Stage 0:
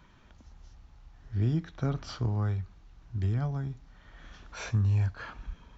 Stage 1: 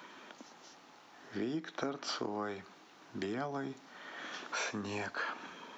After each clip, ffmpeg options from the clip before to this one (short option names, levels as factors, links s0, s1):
-af "highpass=f=270:w=0.5412,highpass=f=270:w=1.3066,acompressor=threshold=0.00562:ratio=5,volume=3.35"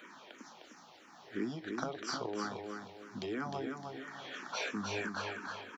-filter_complex "[0:a]aeval=exprs='0.0891*(cos(1*acos(clip(val(0)/0.0891,-1,1)))-cos(1*PI/2))+0.00631*(cos(3*acos(clip(val(0)/0.0891,-1,1)))-cos(3*PI/2))':c=same,aecho=1:1:306|612|918|1224:0.562|0.191|0.065|0.0221,asplit=2[s0][s1];[s1]afreqshift=-3[s2];[s0][s2]amix=inputs=2:normalize=1,volume=1.58"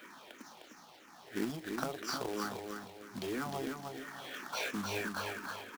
-af "acrusher=bits=2:mode=log:mix=0:aa=0.000001"